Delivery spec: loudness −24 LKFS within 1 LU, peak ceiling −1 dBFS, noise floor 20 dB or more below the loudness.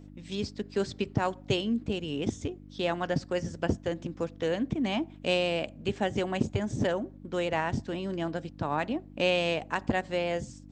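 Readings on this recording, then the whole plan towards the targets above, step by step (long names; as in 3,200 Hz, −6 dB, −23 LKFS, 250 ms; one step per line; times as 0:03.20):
mains hum 50 Hz; hum harmonics up to 300 Hz; level of the hum −48 dBFS; integrated loudness −31.0 LKFS; sample peak −13.5 dBFS; target loudness −24.0 LKFS
→ hum removal 50 Hz, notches 6
level +7 dB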